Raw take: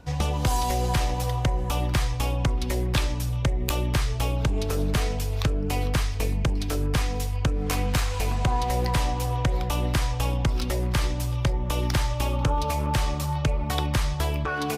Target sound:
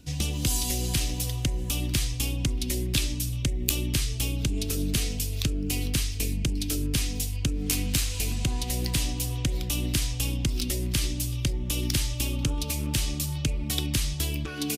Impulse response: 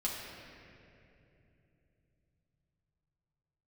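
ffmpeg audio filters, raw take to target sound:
-af "firequalizer=gain_entry='entry(140,0);entry(290,5);entry(480,-7);entry(900,-14);entry(2700,5);entry(8700,11)':delay=0.05:min_phase=1,volume=-3.5dB"

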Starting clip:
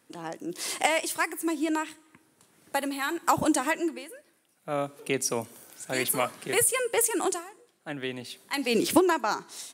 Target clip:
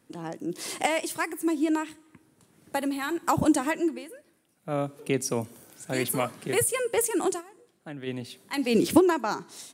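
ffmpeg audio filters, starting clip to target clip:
-filter_complex "[0:a]lowshelf=f=360:g=11,asplit=3[a][b][c];[a]afade=t=out:st=7.4:d=0.02[d];[b]acompressor=threshold=-37dB:ratio=2,afade=t=in:st=7.4:d=0.02,afade=t=out:st=8.06:d=0.02[e];[c]afade=t=in:st=8.06:d=0.02[f];[d][e][f]amix=inputs=3:normalize=0,volume=-3dB"

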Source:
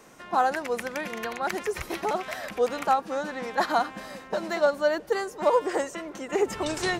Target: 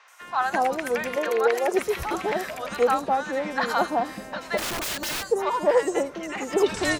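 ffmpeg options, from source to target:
-filter_complex "[0:a]asettb=1/sr,asplit=3[a][b][c];[a]atrim=end=0.954[d];[b]atrim=start=0.95:end=1.58,asetpts=PTS-STARTPTS,afade=t=in:d=0.004:c=qsin,afade=t=out:st=0.626:d=0.004:c=qsin,highpass=f=440:t=q:w=5.1[e];[c]atrim=start=1.576[f];[d][e]acrossfade=d=0.004:c1=hsin:c2=qsin[g];[g][f]acrossfade=d=0.004:c1=qsin:c2=hsin,acrossover=split=850|4800[h][i][j];[j]adelay=80[k];[h]adelay=210[l];[l][i][k]amix=inputs=3:normalize=0,asplit=3[m][n][o];[m]afade=t=out:st=4.57:d=0.02[p];[n]aeval=exprs='(mod(26.6*val(0)+1,2)-1)/26.6':c=same,afade=t=in:st=4.57:d=0.02,afade=t=out:st=5.22:d=0.02[q];[o]afade=t=in:st=5.22:d=0.02[r];[p][q][r]amix=inputs=3:normalize=0,volume=4dB"

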